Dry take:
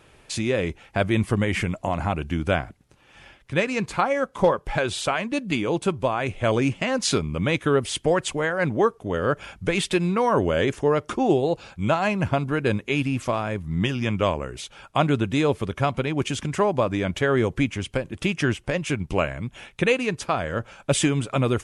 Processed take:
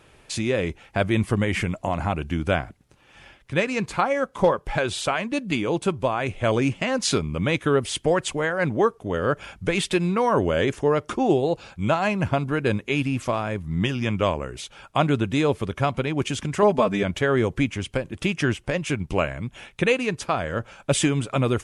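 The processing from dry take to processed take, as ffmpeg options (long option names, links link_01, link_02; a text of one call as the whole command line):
ffmpeg -i in.wav -filter_complex "[0:a]asettb=1/sr,asplit=3[link_01][link_02][link_03];[link_01]atrim=end=16.624[link_04];[link_02]atrim=start=16.62:end=17.03,asetpts=PTS-STARTPTS,afade=type=in:duration=0.004:curve=qsin,afade=type=out:start_time=0.406:duration=0.004:curve=qsin,aecho=1:1:4.6:0.94,atrim=end_sample=18081[link_05];[link_03]atrim=start=17.026[link_06];[link_04][link_05]acrossfade=duration=0.004:curve1=hsin:curve2=qsin[link_07];[link_07][link_06]acrossfade=duration=0.004:curve1=qsin:curve2=hsin" out.wav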